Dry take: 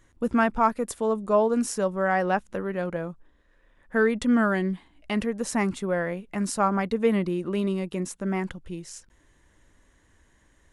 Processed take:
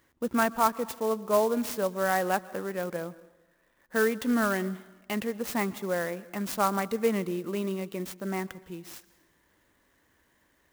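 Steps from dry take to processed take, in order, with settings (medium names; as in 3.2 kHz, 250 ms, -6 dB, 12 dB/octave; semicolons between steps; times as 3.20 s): high-pass 240 Hz 6 dB/octave; plate-style reverb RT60 1.1 s, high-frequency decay 0.8×, pre-delay 110 ms, DRR 19 dB; sampling jitter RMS 0.035 ms; trim -2 dB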